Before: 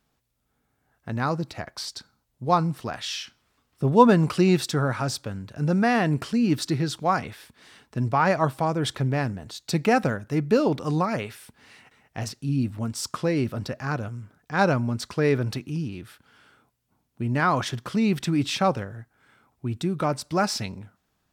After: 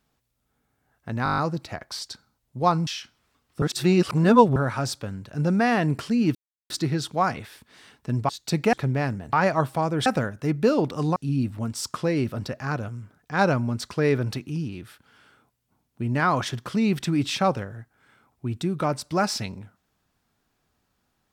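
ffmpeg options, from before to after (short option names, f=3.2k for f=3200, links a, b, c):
-filter_complex "[0:a]asplit=17[a][b][c][d][e][f][g][h][i][j][k][l][m][n][o][p][q];[a]atrim=end=1.262[r];[b]atrim=start=1.238:end=1.262[s];[c]atrim=start=1.238:end=1.262[t];[d]atrim=start=1.238:end=1.262[u];[e]atrim=start=1.238:end=1.262[v];[f]atrim=start=1.238:end=1.262[w];[g]atrim=start=1.238:end=1.262[x];[h]atrim=start=1.238:end=2.732[y];[i]atrim=start=3.098:end=3.852[z];[j]atrim=start=3.848:end=4.792,asetpts=PTS-STARTPTS,areverse[aa];[k]atrim=start=4.788:end=6.58,asetpts=PTS-STARTPTS,afade=t=out:st=1.788:d=0.004:c=hsin,apad=pad_dur=0.35[ab];[l]atrim=start=6.58:end=8.172,asetpts=PTS-STARTPTS,afade=t=in:d=0.004:c=hsin[ac];[m]atrim=start=9.498:end=9.942[ad];[n]atrim=start=8.898:end=9.502[ae];[o]atrim=start=8.168:end=8.902[af];[p]atrim=start=9.938:end=11.042[ag];[q]atrim=start=12.358[ah];[r][s]acrossfade=d=0.004:c1=hsin:c2=hsin[ai];[ai][t]acrossfade=d=0.004:c1=hsin:c2=hsin[aj];[aj][u]acrossfade=d=0.004:c1=hsin:c2=hsin[ak];[ak][v]acrossfade=d=0.004:c1=hsin:c2=hsin[al];[al][w]acrossfade=d=0.004:c1=hsin:c2=hsin[am];[am][x]acrossfade=d=0.004:c1=hsin:c2=hsin[an];[an][y]acrossfade=d=0.004:c1=hsin:c2=hsin[ao];[ao][z]acrossfade=d=0.004:c1=hsin:c2=hsin[ap];[ap][aa]acrossfade=d=0.004:c1=hsin:c2=hsin[aq];[ab][ac]concat=n=2:v=0:a=1[ar];[aq][ar]acrossfade=d=0.004:c1=hsin:c2=hsin[as];[as][ad]acrossfade=d=0.004:c1=hsin:c2=hsin[at];[at][ae]acrossfade=d=0.004:c1=hsin:c2=hsin[au];[au][af]acrossfade=d=0.004:c1=hsin:c2=hsin[av];[av][ag]acrossfade=d=0.004:c1=hsin:c2=hsin[aw];[aw][ah]acrossfade=d=0.004:c1=hsin:c2=hsin"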